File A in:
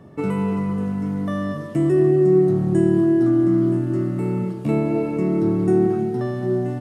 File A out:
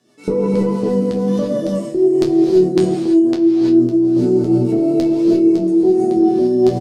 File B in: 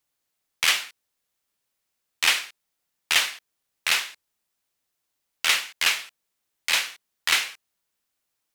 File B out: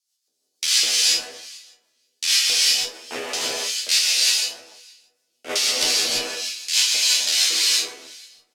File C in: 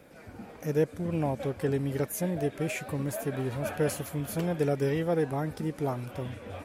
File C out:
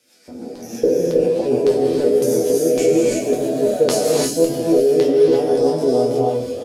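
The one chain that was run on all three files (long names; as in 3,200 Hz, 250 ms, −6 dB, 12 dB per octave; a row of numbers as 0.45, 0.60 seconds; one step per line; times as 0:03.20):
peak hold with a decay on every bin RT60 1.12 s
ambience of single reflections 15 ms −10 dB, 75 ms −12 dB
rotating-speaker cabinet horn 6.3 Hz
octave-band graphic EQ 250/1,000/2,000/4,000 Hz +8/−3/−5/−7 dB
auto-filter band-pass square 1.8 Hz 480–4,600 Hz
high-shelf EQ 5,000 Hz +10 dB
resonators tuned to a chord E2 fifth, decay 0.22 s
reverb whose tail is shaped and stops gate 370 ms rising, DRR −1.5 dB
reversed playback
downward compressor 12 to 1, threshold −34 dBFS
reversed playback
flanger 1.3 Hz, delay 8.3 ms, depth 3.5 ms, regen +56%
normalise the peak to −3 dBFS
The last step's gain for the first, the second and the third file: +27.5, +24.5, +29.0 decibels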